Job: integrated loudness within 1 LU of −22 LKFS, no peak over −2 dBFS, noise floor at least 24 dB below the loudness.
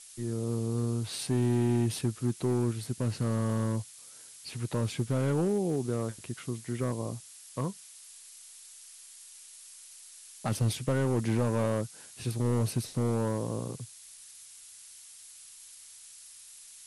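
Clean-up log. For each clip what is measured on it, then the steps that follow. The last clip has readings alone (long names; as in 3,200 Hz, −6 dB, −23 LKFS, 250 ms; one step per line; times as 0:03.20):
share of clipped samples 1.7%; peaks flattened at −21.5 dBFS; background noise floor −51 dBFS; target noise floor −55 dBFS; integrated loudness −31.0 LKFS; sample peak −21.5 dBFS; target loudness −22.0 LKFS
→ clipped peaks rebuilt −21.5 dBFS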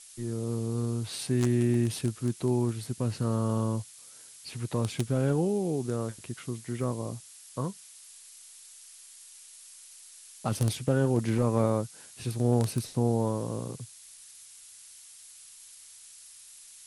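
share of clipped samples 0.0%; background noise floor −51 dBFS; target noise floor −54 dBFS
→ broadband denoise 6 dB, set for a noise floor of −51 dBFS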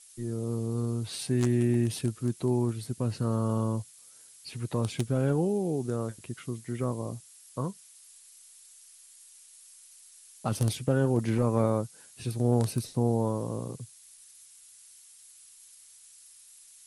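background noise floor −55 dBFS; integrated loudness −30.0 LKFS; sample peak −12.5 dBFS; target loudness −22.0 LKFS
→ level +8 dB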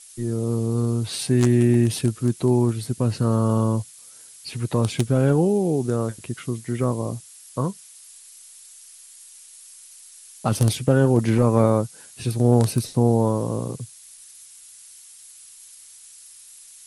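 integrated loudness −22.0 LKFS; sample peak −4.5 dBFS; background noise floor −47 dBFS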